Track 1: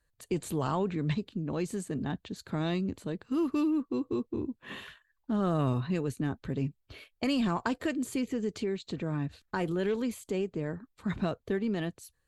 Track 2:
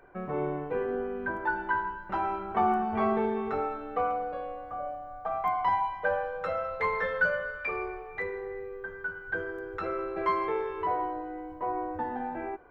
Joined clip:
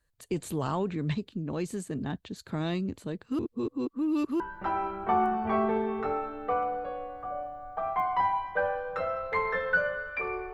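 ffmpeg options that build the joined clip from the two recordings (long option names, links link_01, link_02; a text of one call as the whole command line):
ffmpeg -i cue0.wav -i cue1.wav -filter_complex "[0:a]apad=whole_dur=10.53,atrim=end=10.53,asplit=2[link_01][link_02];[link_01]atrim=end=3.392[link_03];[link_02]atrim=start=3.388:end=4.402,asetpts=PTS-STARTPTS,areverse[link_04];[1:a]atrim=start=1.878:end=8.01[link_05];[link_03][link_04]acrossfade=duration=0.004:curve1=hsin:curve2=hsin[link_06];[link_06][link_05]acrossfade=duration=0.004:curve1=hsin:curve2=hsin" out.wav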